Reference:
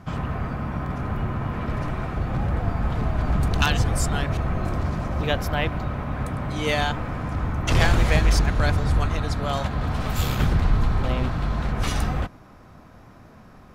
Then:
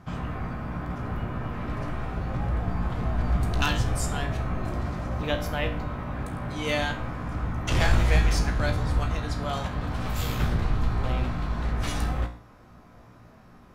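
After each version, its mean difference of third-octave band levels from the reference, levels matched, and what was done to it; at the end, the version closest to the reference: 1.0 dB: resonator 59 Hz, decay 0.41 s, harmonics all, mix 80%; gain +3 dB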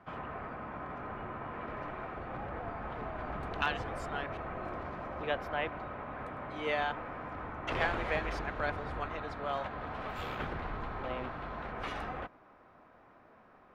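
6.0 dB: three-band isolator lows -16 dB, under 310 Hz, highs -22 dB, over 3000 Hz; gain -7 dB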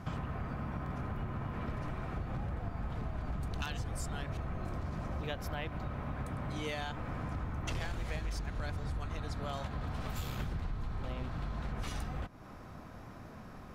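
3.0 dB: compressor, threshold -34 dBFS, peak gain reduction 19.5 dB; gain -1.5 dB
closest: first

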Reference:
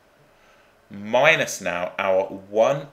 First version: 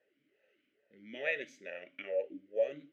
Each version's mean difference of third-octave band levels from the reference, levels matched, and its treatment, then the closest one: 8.0 dB: bell 680 Hz -4 dB 0.25 oct; vowel sweep e-i 2.3 Hz; gain -7 dB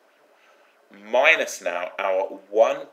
4.0 dB: HPF 270 Hz 24 dB/oct; LFO bell 3.5 Hz 380–2800 Hz +7 dB; gain -3.5 dB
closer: second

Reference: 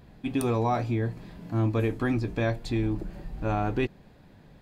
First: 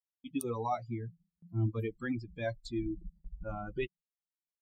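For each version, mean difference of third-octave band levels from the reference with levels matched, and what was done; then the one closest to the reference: 12.0 dB: per-bin expansion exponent 3; gate with hold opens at -52 dBFS; gain -3 dB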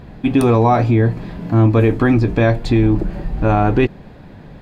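2.0 dB: high shelf 4600 Hz -11.5 dB; in parallel at +3 dB: limiter -22.5 dBFS, peak gain reduction 5.5 dB; on the sum: gain +7.5 dB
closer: second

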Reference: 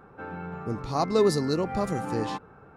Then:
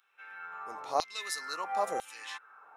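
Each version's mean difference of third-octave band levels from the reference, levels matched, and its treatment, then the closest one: 11.5 dB: high shelf 7600 Hz +7 dB; notch 4600 Hz, Q 7.6; LFO high-pass saw down 1 Hz 530–3400 Hz; short-mantissa float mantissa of 8-bit; gain -4.5 dB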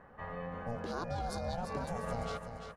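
8.0 dB: compressor, threshold -27 dBFS, peak gain reduction 10.5 dB; limiter -24 dBFS, peak gain reduction 6 dB; ring modulator 350 Hz; feedback echo 0.342 s, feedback 29%, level -8 dB; gain -2 dB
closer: second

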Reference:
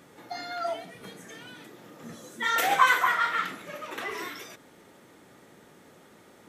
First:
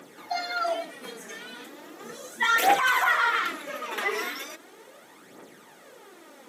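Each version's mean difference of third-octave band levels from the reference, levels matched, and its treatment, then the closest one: 4.0 dB: HPF 280 Hz 12 dB/oct; limiter -18.5 dBFS, peak gain reduction 11 dB; phaser 0.37 Hz, delay 5 ms, feedback 54%; gain +4 dB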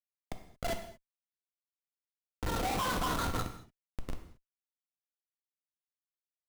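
16.5 dB: LPF 1300 Hz 24 dB/oct; Schmitt trigger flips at -28.5 dBFS; non-linear reverb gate 0.25 s falling, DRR 5.5 dB; gain +1 dB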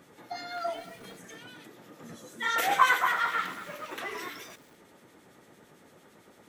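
1.5 dB: harmonic tremolo 8.9 Hz, depth 50%, crossover 2000 Hz; lo-fi delay 0.227 s, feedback 55%, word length 7-bit, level -14.5 dB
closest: third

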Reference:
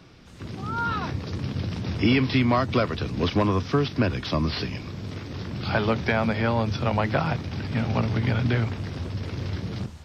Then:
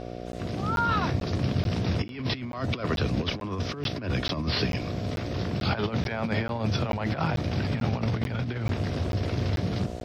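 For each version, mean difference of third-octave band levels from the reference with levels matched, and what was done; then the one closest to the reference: 6.0 dB: buzz 60 Hz, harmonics 12, -40 dBFS 0 dB/oct; negative-ratio compressor -26 dBFS, ratio -0.5; crackling interface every 0.44 s, samples 512, zero, from 0.32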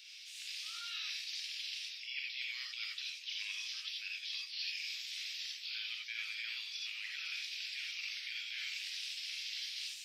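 26.0 dB: steep high-pass 2400 Hz 36 dB/oct; reverse; compressor 12:1, threshold -47 dBFS, peak gain reduction 21 dB; reverse; non-linear reverb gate 0.11 s rising, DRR -1.5 dB; gain +5.5 dB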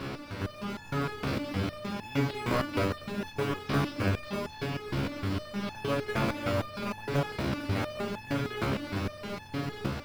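9.5 dB: per-bin compression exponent 0.4; in parallel at -7 dB: sample-and-hold 40×; on the sum: stepped resonator 6.5 Hz 68–870 Hz; gain -3 dB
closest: first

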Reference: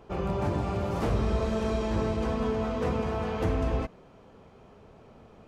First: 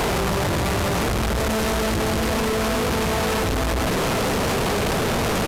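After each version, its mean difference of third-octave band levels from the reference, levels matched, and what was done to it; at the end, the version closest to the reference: 14.0 dB: infinite clipping; downsampling 32000 Hz; gain +8 dB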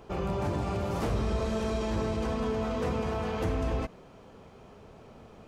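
2.5 dB: in parallel at +3 dB: limiter -28.5 dBFS, peak gain reduction 11.5 dB; on the sum: high shelf 4200 Hz +5.5 dB; gain -6 dB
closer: second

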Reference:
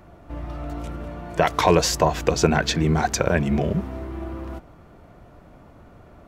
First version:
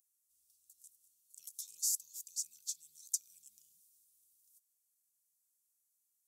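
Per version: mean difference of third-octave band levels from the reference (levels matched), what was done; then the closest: 25.0 dB: inverse Chebyshev high-pass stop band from 1900 Hz, stop band 70 dB; spring tank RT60 3.3 s, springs 54 ms, DRR 14.5 dB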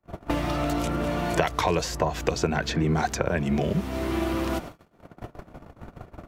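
7.0 dB: gate -43 dBFS, range -56 dB; three-band squash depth 100%; gain -4.5 dB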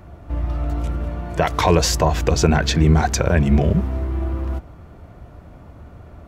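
1.0 dB: in parallel at 0 dB: limiter -12 dBFS, peak gain reduction 8 dB; on the sum: bell 71 Hz +9.5 dB 1.6 oct; gain -3.5 dB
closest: third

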